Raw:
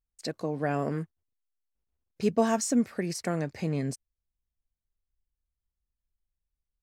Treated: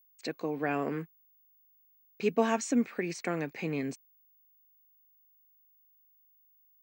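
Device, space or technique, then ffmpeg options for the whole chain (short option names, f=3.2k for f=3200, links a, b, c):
old television with a line whistle: -af "highpass=f=180:w=0.5412,highpass=f=180:w=1.3066,equalizer=f=200:t=q:w=4:g=-6,equalizer=f=610:t=q:w=4:g=-6,equalizer=f=2.4k:t=q:w=4:g=8,equalizer=f=5.1k:t=q:w=4:g=-9,lowpass=f=6.6k:w=0.5412,lowpass=f=6.6k:w=1.3066,aeval=exprs='val(0)+0.000708*sin(2*PI*15625*n/s)':c=same"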